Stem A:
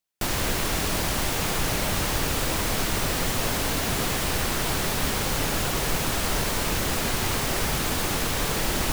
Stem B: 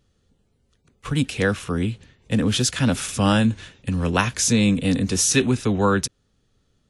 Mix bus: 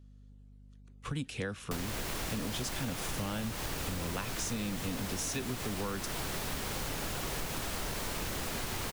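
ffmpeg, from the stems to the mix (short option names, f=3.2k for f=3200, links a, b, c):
-filter_complex "[0:a]adelay=1500,volume=-4.5dB[a];[1:a]aeval=exprs='val(0)+0.00501*(sin(2*PI*50*n/s)+sin(2*PI*2*50*n/s)/2+sin(2*PI*3*50*n/s)/3+sin(2*PI*4*50*n/s)/4+sin(2*PI*5*50*n/s)/5)':c=same,volume=-7.5dB[b];[a][b]amix=inputs=2:normalize=0,acompressor=threshold=-33dB:ratio=6"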